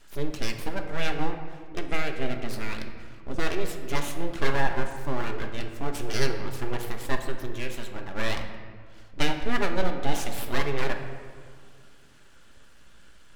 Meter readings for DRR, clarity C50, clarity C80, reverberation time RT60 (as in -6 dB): 4.0 dB, 7.0 dB, 8.5 dB, 2.0 s